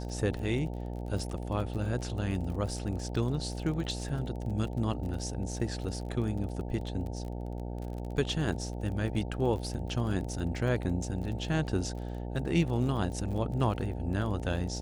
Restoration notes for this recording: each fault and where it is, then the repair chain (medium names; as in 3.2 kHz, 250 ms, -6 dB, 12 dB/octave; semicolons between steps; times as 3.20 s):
buzz 60 Hz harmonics 15 -37 dBFS
crackle 34 per s -38 dBFS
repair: de-click; de-hum 60 Hz, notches 15